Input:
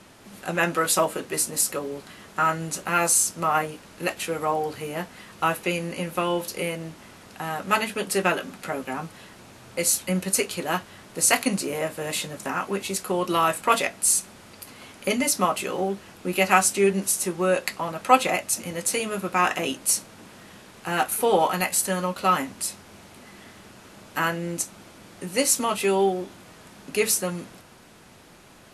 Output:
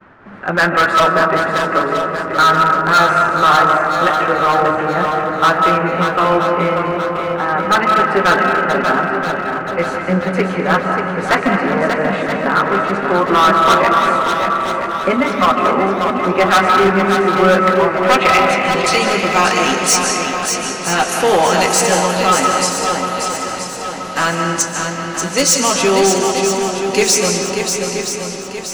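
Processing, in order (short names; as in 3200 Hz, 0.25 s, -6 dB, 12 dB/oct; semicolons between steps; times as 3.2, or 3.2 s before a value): expander -46 dBFS; low-pass sweep 1500 Hz -> 6200 Hz, 17.88–19.18; digital reverb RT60 1.9 s, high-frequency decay 0.65×, pre-delay 0.11 s, DRR 4 dB; hard clip -16.5 dBFS, distortion -9 dB; on a send: swung echo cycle 0.977 s, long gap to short 1.5:1, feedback 44%, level -6 dB; on the sum: gain +8.5 dB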